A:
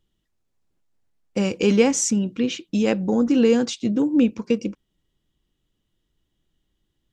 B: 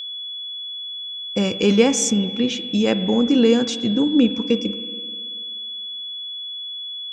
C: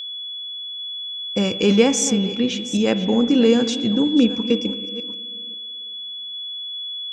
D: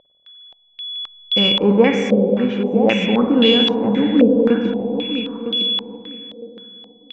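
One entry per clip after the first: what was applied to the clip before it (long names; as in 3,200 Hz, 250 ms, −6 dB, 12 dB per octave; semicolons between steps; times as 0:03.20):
noise reduction from a noise print of the clip's start 14 dB; spring reverb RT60 2.1 s, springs 48/54 ms, chirp 65 ms, DRR 12 dB; steady tone 3,400 Hz −30 dBFS; level +1.5 dB
delay that plays each chunk backwards 396 ms, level −14 dB
on a send: repeating echo 958 ms, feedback 19%, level −9.5 dB; on the sum: spring reverb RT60 2.8 s, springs 49/56 ms, chirp 45 ms, DRR 4.5 dB; low-pass on a step sequencer 3.8 Hz 570–3,200 Hz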